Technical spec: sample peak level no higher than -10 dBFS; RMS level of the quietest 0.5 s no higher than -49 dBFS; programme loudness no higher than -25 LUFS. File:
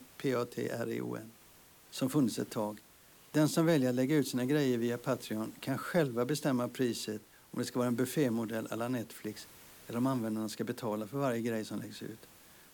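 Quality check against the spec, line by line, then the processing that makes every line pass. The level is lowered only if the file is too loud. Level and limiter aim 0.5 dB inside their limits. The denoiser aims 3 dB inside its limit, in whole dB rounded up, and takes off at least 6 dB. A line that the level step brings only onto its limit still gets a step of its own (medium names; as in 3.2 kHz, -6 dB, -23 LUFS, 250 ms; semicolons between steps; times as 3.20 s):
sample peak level -17.5 dBFS: pass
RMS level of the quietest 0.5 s -60 dBFS: pass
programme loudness -34.0 LUFS: pass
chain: none needed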